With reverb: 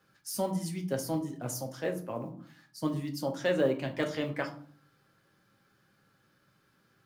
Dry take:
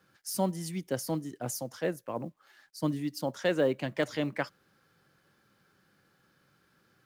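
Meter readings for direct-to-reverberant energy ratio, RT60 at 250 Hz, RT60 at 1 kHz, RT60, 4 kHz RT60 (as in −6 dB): 3.0 dB, 0.75 s, 0.50 s, 0.55 s, 0.30 s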